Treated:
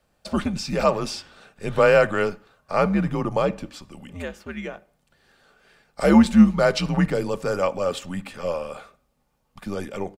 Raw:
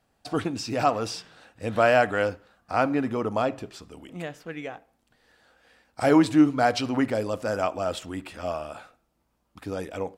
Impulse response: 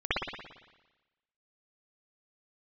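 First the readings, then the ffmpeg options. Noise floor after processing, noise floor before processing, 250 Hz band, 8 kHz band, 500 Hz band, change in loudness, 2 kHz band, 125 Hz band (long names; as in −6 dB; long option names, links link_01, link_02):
−69 dBFS, −72 dBFS, +4.5 dB, +2.5 dB, +3.5 dB, +3.5 dB, +2.0 dB, +6.5 dB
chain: -af "aecho=1:1:3.2:0.31,afreqshift=-89,volume=2.5dB"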